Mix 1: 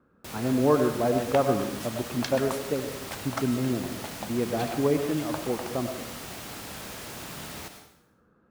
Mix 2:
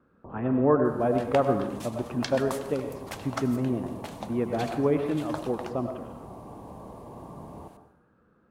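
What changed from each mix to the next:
first sound: add brick-wall FIR low-pass 1.2 kHz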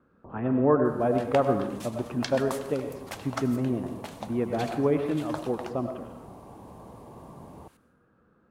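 first sound: send off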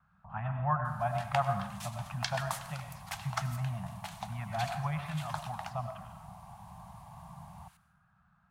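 master: add elliptic band-stop 180–730 Hz, stop band 40 dB

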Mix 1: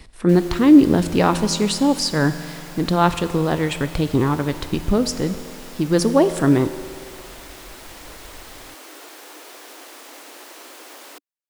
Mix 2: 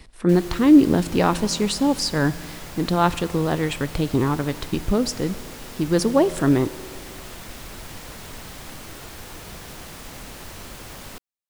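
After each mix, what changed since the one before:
speech: send -6.5 dB; background: remove elliptic high-pass 290 Hz, stop band 50 dB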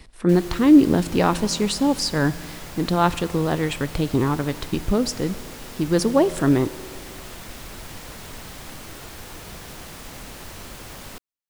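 no change

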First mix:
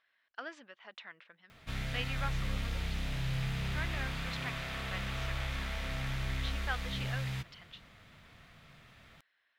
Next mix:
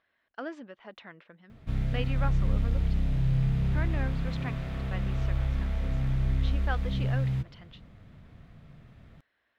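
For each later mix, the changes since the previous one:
speech +6.5 dB; master: add tilt shelf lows +10 dB, about 740 Hz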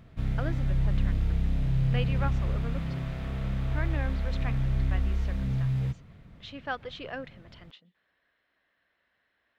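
background: entry -1.50 s; reverb: on, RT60 0.35 s

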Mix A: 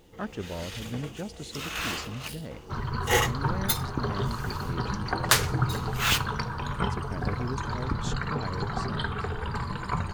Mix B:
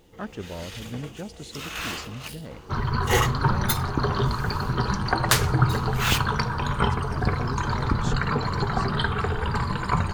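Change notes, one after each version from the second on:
second sound +6.0 dB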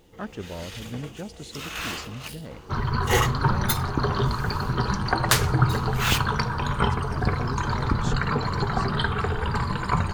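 no change

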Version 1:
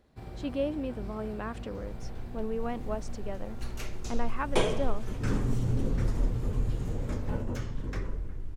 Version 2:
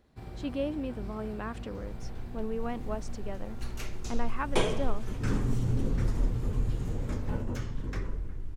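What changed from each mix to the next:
master: add peaking EQ 570 Hz -2.5 dB 0.75 oct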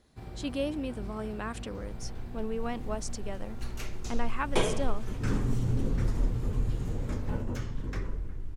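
speech: remove low-pass 1.9 kHz 6 dB/octave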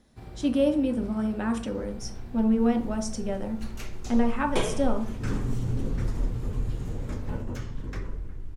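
reverb: on, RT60 0.45 s

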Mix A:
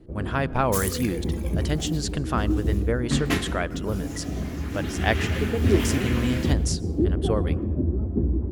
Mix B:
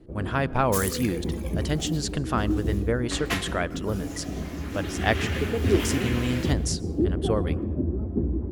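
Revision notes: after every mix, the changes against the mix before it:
first sound: add bass shelf 130 Hz -5 dB; second sound: add Chebyshev high-pass 500 Hz, order 10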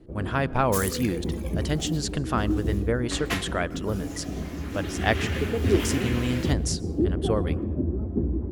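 second sound: send -7.0 dB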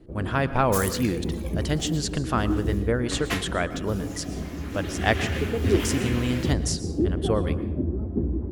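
speech: send +11.0 dB

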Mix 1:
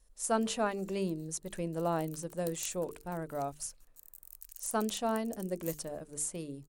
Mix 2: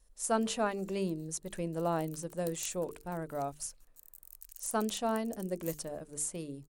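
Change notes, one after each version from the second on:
reverb: off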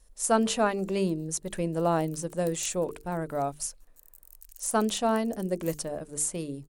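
speech +6.5 dB

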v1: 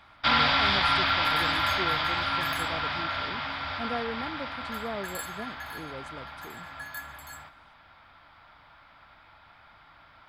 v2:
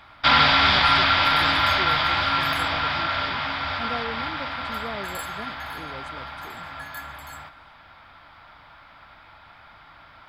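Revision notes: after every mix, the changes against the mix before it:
first sound +6.0 dB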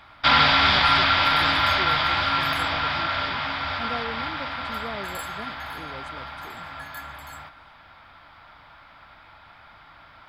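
reverb: off

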